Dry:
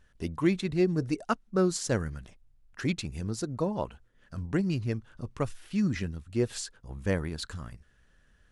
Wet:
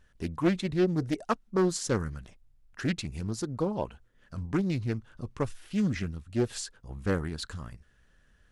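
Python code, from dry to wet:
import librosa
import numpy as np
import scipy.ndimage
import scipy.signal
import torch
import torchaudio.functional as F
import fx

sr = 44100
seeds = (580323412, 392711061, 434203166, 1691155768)

y = fx.doppler_dist(x, sr, depth_ms=0.36)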